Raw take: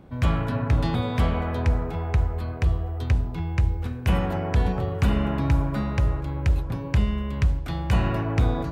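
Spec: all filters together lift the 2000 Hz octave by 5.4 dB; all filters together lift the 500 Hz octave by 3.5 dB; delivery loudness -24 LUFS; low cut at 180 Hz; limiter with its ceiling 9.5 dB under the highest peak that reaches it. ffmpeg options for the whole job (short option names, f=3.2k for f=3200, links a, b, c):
-af "highpass=180,equalizer=f=500:t=o:g=4,equalizer=f=2k:t=o:g=6.5,volume=6dB,alimiter=limit=-11.5dB:level=0:latency=1"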